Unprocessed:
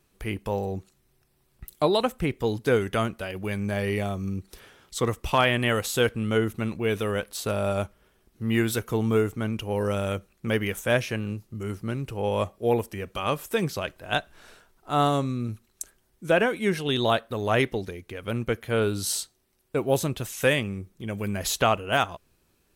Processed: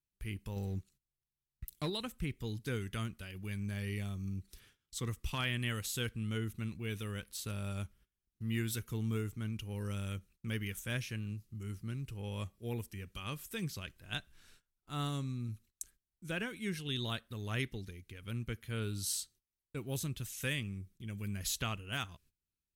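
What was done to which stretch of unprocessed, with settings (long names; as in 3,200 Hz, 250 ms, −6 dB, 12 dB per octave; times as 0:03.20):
0:00.56–0:01.90: leveller curve on the samples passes 1
whole clip: noise gate −51 dBFS, range −18 dB; guitar amp tone stack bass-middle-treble 6-0-2; level +6.5 dB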